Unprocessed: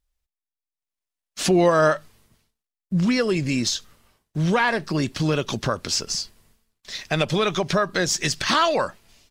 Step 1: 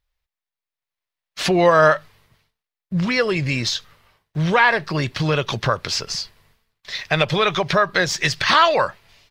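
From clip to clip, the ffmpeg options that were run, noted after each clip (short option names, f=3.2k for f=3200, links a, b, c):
-af "equalizer=f=125:t=o:w=1:g=7,equalizer=f=250:t=o:w=1:g=-6,equalizer=f=500:t=o:w=1:g=4,equalizer=f=1k:t=o:w=1:g=5,equalizer=f=2k:t=o:w=1:g=7,equalizer=f=4k:t=o:w=1:g=5,equalizer=f=8k:t=o:w=1:g=-6,volume=-1dB"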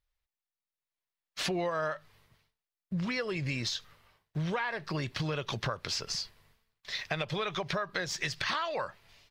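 -af "acompressor=threshold=-23dB:ratio=6,volume=-7dB"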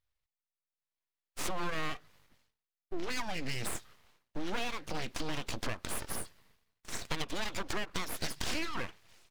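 -af "aeval=exprs='abs(val(0))':c=same"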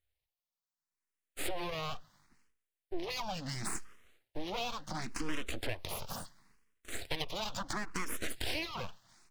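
-filter_complex "[0:a]asplit=2[a][b];[b]afreqshift=0.72[c];[a][c]amix=inputs=2:normalize=1,volume=2dB"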